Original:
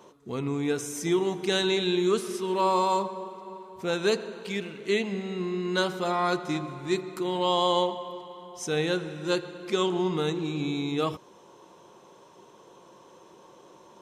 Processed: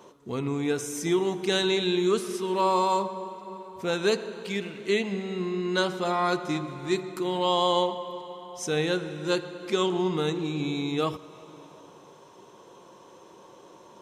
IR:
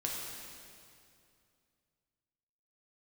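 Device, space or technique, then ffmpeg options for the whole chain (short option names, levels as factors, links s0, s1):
compressed reverb return: -filter_complex "[0:a]asplit=2[s0][s1];[1:a]atrim=start_sample=2205[s2];[s1][s2]afir=irnorm=-1:irlink=0,acompressor=threshold=0.0316:ratio=6,volume=0.237[s3];[s0][s3]amix=inputs=2:normalize=0,asettb=1/sr,asplit=3[s4][s5][s6];[s4]atrim=end=5.484[s7];[s5]atrim=start=5.48:end=6.07,asetpts=PTS-STARTPTS,afade=t=in:d=0.004:c=qsin,afade=t=out:st=0.586:d=0.004:c=qsin,lowpass=11000[s8];[s6]atrim=start=6.066[s9];[s7][s8]acrossfade=d=0.004:c1=hsin:c2=qsin[s10];[s10][s9]acrossfade=d=0.004:c1=qsin:c2=hsin"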